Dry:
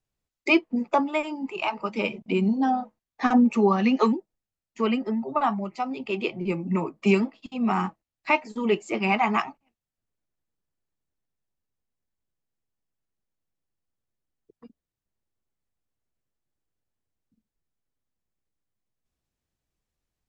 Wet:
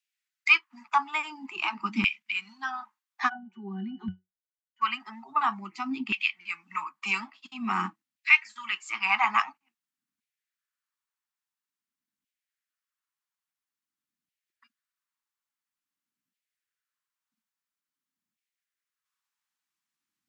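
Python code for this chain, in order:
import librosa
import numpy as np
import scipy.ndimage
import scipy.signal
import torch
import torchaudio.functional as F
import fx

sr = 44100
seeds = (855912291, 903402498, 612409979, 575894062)

y = fx.filter_lfo_highpass(x, sr, shape='saw_down', hz=0.49, low_hz=240.0, high_hz=2500.0, q=2.0)
y = scipy.signal.sosfilt(scipy.signal.cheby1(2, 1.0, [220.0, 1200.0], 'bandstop', fs=sr, output='sos'), y)
y = fx.octave_resonator(y, sr, note='F#', decay_s=0.17, at=(3.28, 4.81), fade=0.02)
y = F.gain(torch.from_numpy(y), 1.5).numpy()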